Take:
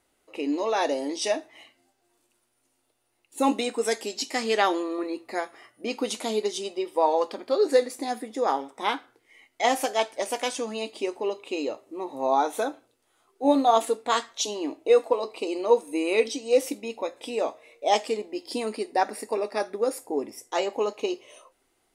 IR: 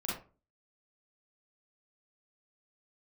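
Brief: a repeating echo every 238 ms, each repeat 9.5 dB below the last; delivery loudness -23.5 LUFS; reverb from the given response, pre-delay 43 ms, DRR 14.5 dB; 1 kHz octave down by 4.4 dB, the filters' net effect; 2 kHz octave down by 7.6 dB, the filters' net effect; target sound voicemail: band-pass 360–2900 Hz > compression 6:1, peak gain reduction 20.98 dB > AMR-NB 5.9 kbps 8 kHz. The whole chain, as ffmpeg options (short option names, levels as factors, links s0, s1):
-filter_complex "[0:a]equalizer=f=1000:t=o:g=-4.5,equalizer=f=2000:t=o:g=-7,aecho=1:1:238|476|714|952:0.335|0.111|0.0365|0.012,asplit=2[s0][s1];[1:a]atrim=start_sample=2205,adelay=43[s2];[s1][s2]afir=irnorm=-1:irlink=0,volume=0.126[s3];[s0][s3]amix=inputs=2:normalize=0,highpass=360,lowpass=2900,acompressor=threshold=0.0112:ratio=6,volume=10.6" -ar 8000 -c:a libopencore_amrnb -b:a 5900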